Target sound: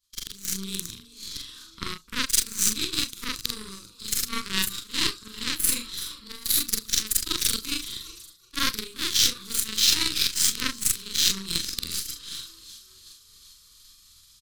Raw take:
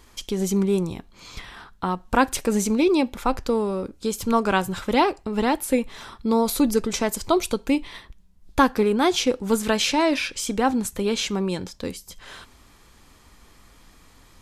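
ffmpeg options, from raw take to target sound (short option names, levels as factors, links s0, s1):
-filter_complex "[0:a]afftfilt=real='re':imag='-im':win_size=4096:overlap=0.75,equalizer=f=250:t=o:w=1:g=-7,equalizer=f=500:t=o:w=1:g=-8,equalizer=f=1000:t=o:w=1:g=11,equalizer=f=2000:t=o:w=1:g=-10,equalizer=f=4000:t=o:w=1:g=12,asplit=7[s0][s1][s2][s3][s4][s5][s6];[s1]adelay=376,afreqshift=45,volume=0.141[s7];[s2]adelay=752,afreqshift=90,volume=0.0891[s8];[s3]adelay=1128,afreqshift=135,volume=0.0562[s9];[s4]adelay=1504,afreqshift=180,volume=0.0355[s10];[s5]adelay=1880,afreqshift=225,volume=0.0221[s11];[s6]adelay=2256,afreqshift=270,volume=0.014[s12];[s0][s7][s8][s9][s10][s11][s12]amix=inputs=7:normalize=0,agate=range=0.0224:threshold=0.00447:ratio=3:detection=peak,asplit=2[s13][s14];[s14]adelay=37,volume=0.316[s15];[s13][s15]amix=inputs=2:normalize=0,crystalizer=i=6.5:c=0,aeval=exprs='1.5*(cos(1*acos(clip(val(0)/1.5,-1,1)))-cos(1*PI/2))+0.0266*(cos(5*acos(clip(val(0)/1.5,-1,1)))-cos(5*PI/2))+0.211*(cos(7*acos(clip(val(0)/1.5,-1,1)))-cos(7*PI/2))+0.0473*(cos(8*acos(clip(val(0)/1.5,-1,1)))-cos(8*PI/2))':c=same,areverse,acompressor=threshold=0.0316:ratio=5,areverse,lowshelf=f=170:g=3.5,dynaudnorm=f=410:g=3:m=5.62,asuperstop=centerf=730:order=4:qfactor=0.71"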